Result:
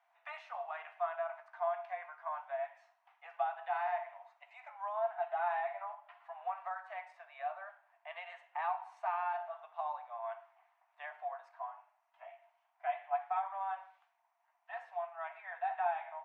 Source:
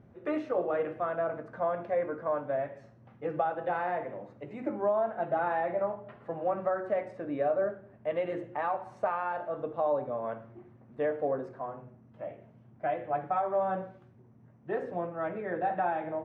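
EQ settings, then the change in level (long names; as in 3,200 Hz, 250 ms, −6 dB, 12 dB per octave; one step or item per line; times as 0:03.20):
Chebyshev high-pass with heavy ripple 670 Hz, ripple 6 dB
0.0 dB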